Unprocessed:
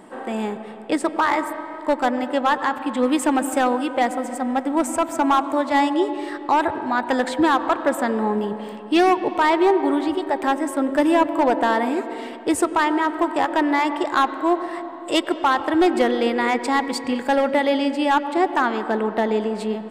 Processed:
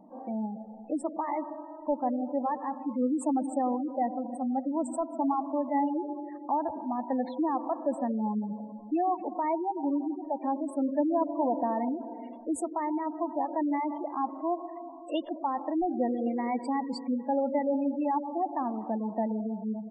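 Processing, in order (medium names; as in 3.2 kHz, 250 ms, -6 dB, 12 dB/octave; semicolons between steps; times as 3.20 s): spectral gate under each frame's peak -15 dB strong; tilt shelf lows +3 dB, about 650 Hz; static phaser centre 400 Hz, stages 6; trim -7.5 dB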